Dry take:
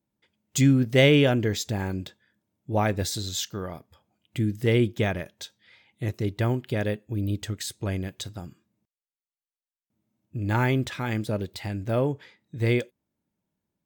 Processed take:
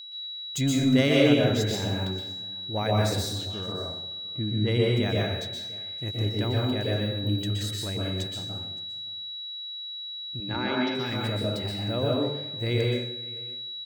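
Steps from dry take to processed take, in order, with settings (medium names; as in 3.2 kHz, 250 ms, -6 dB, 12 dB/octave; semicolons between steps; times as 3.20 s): 3.30–4.89 s: level-controlled noise filter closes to 650 Hz, open at -17 dBFS; saturation -10.5 dBFS, distortion -23 dB; 10.40–10.95 s: Chebyshev band-pass 170–5500 Hz, order 4; whistle 3.9 kHz -34 dBFS; on a send: delay 567 ms -22 dB; on the sum: plate-style reverb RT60 0.84 s, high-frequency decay 0.7×, pre-delay 110 ms, DRR -3 dB; trim -5.5 dB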